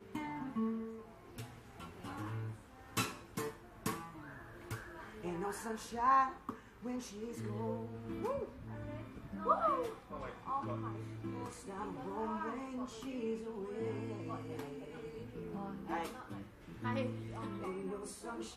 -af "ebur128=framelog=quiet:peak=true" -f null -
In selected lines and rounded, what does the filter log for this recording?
Integrated loudness:
  I:         -40.9 LUFS
  Threshold: -51.1 LUFS
Loudness range:
  LRA:         5.7 LU
  Threshold: -60.9 LUFS
  LRA low:   -43.7 LUFS
  LRA high:  -38.0 LUFS
True peak:
  Peak:      -18.9 dBFS